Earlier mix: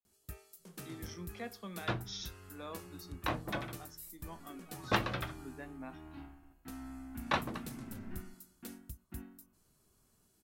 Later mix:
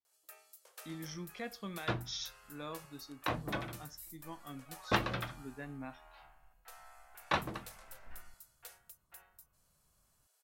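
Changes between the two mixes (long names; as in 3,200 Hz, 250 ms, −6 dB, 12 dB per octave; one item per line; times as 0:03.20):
speech: remove Chebyshev high-pass with heavy ripple 170 Hz, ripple 3 dB
first sound: add elliptic high-pass filter 510 Hz, stop band 50 dB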